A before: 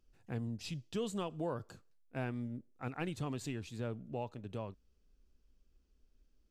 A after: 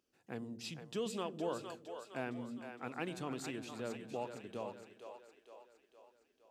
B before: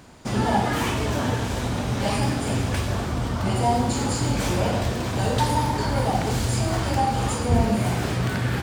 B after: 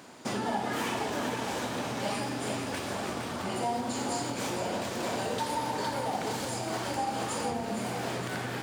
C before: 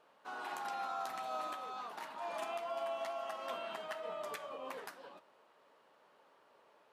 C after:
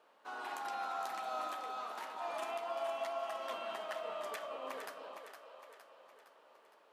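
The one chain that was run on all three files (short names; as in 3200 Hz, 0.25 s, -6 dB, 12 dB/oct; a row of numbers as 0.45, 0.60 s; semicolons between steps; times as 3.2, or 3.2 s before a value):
split-band echo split 390 Hz, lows 0.105 s, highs 0.462 s, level -7.5 dB; compressor, threshold -26 dBFS; HPF 240 Hz 12 dB/oct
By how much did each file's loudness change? -2.0, -8.5, +0.5 LU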